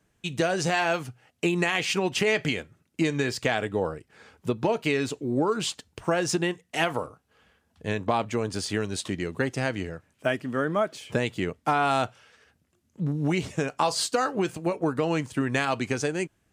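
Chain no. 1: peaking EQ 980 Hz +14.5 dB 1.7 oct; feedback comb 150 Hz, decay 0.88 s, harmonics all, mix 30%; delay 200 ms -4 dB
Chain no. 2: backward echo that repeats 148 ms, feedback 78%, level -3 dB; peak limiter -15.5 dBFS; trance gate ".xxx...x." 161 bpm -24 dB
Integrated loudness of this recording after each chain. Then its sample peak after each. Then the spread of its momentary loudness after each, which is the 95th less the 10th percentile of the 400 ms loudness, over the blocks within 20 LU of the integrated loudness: -21.5 LUFS, -30.0 LUFS; -1.5 dBFS, -15.5 dBFS; 11 LU, 8 LU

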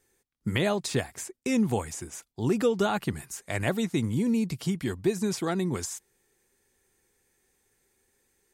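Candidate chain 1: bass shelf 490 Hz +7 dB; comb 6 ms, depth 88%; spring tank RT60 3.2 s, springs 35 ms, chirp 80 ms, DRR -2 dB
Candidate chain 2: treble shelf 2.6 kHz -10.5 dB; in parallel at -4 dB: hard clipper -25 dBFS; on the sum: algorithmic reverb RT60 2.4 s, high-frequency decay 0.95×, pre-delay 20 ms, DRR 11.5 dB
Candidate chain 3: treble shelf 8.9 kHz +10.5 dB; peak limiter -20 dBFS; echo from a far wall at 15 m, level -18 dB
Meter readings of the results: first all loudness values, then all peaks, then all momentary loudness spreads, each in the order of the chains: -18.0 LUFS, -26.0 LUFS, -30.5 LUFS; -4.0 dBFS, -11.5 dBFS, -19.0 dBFS; 12 LU, 12 LU, 7 LU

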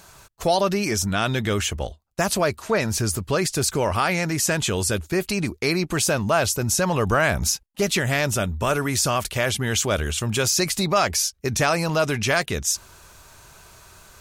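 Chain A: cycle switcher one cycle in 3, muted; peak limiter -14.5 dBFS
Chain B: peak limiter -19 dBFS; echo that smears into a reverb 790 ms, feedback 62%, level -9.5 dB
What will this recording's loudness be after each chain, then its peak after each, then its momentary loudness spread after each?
-26.0 LUFS, -28.0 LUFS; -14.5 dBFS, -15.5 dBFS; 3 LU, 6 LU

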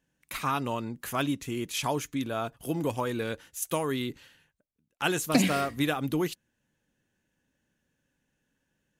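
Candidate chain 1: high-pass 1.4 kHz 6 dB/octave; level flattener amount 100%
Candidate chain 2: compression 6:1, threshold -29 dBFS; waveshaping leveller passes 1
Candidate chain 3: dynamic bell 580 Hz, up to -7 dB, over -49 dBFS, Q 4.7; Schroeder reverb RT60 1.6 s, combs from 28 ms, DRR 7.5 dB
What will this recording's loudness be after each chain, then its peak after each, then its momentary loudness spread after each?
-26.5 LUFS, -31.0 LUFS, -30.0 LUFS; -4.0 dBFS, -17.0 dBFS, -9.5 dBFS; 16 LU, 4 LU, 14 LU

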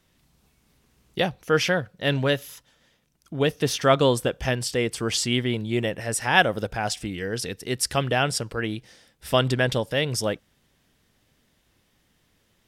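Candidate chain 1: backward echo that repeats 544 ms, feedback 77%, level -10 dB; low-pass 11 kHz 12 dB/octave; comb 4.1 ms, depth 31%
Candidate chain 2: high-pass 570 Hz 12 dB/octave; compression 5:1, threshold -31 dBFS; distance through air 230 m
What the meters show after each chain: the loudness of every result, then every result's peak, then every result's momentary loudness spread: -24.0 LUFS, -38.0 LUFS; -1.5 dBFS, -18.0 dBFS; 14 LU, 5 LU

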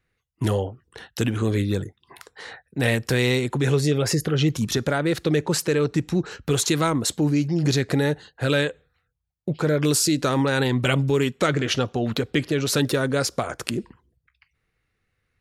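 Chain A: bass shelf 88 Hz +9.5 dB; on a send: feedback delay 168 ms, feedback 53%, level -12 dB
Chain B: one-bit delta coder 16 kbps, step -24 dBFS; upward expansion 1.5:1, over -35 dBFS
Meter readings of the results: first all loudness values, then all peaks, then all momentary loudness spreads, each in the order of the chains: -21.5 LUFS, -25.5 LUFS; -2.5 dBFS, -9.5 dBFS; 13 LU, 14 LU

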